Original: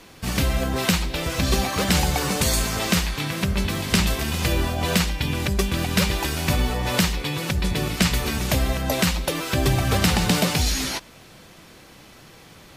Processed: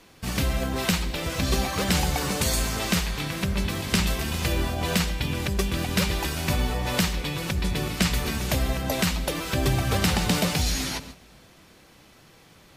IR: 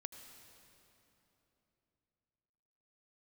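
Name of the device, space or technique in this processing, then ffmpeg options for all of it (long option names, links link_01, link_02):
keyed gated reverb: -filter_complex "[0:a]asplit=3[link_01][link_02][link_03];[1:a]atrim=start_sample=2205[link_04];[link_02][link_04]afir=irnorm=-1:irlink=0[link_05];[link_03]apad=whole_len=563111[link_06];[link_05][link_06]sidechaingate=range=-13dB:threshold=-43dB:ratio=16:detection=peak,volume=0.5dB[link_07];[link_01][link_07]amix=inputs=2:normalize=0,volume=-7.5dB"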